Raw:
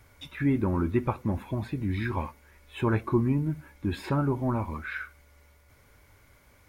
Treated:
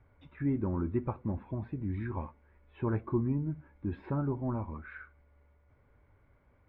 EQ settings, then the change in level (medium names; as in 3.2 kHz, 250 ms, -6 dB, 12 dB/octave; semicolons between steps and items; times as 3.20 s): distance through air 340 m; treble shelf 2.4 kHz -10.5 dB; peaking EQ 5.3 kHz -3.5 dB 2.1 oct; -5.0 dB